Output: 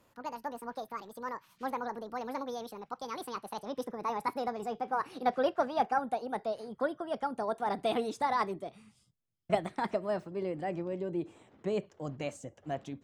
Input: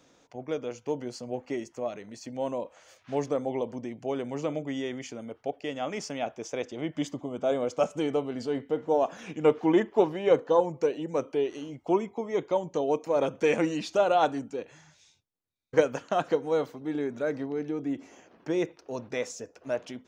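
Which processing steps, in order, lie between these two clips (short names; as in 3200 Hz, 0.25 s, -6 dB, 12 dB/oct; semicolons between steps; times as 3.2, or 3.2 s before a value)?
speed glide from 197% -> 111%; tone controls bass +15 dB, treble -3 dB; gain -7 dB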